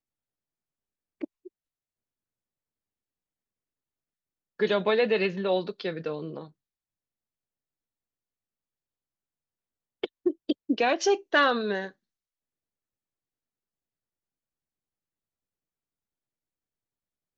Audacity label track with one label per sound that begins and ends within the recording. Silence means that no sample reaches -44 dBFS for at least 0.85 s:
1.210000	1.480000	sound
4.590000	6.470000	sound
10.030000	11.910000	sound